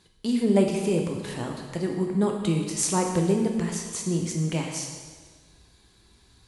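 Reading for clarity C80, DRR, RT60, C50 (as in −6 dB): 5.5 dB, 1.5 dB, 1.5 s, 4.0 dB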